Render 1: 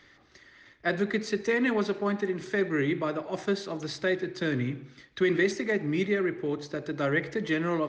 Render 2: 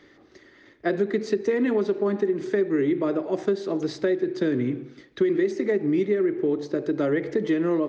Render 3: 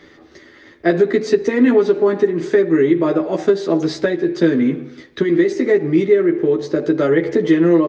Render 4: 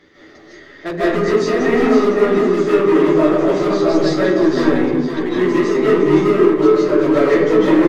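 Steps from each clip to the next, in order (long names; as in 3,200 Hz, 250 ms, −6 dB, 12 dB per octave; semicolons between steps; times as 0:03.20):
parametric band 360 Hz +13.5 dB 1.7 octaves; downward compressor 5 to 1, threshold −18 dBFS, peak gain reduction 10 dB; level −1.5 dB
double-tracking delay 12 ms −2 dB; level +7 dB
gain into a clipping stage and back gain 14 dB; on a send: single-tap delay 508 ms −7 dB; on the sum: comb and all-pass reverb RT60 0.92 s, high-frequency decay 0.45×, pre-delay 115 ms, DRR −9.5 dB; level −6 dB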